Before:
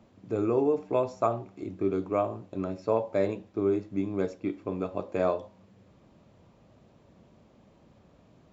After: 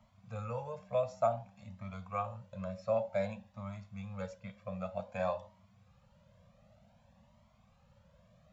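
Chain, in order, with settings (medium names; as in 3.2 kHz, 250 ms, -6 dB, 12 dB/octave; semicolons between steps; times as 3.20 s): elliptic band-stop 220–530 Hz, stop band 40 dB; Shepard-style flanger rising 0.54 Hz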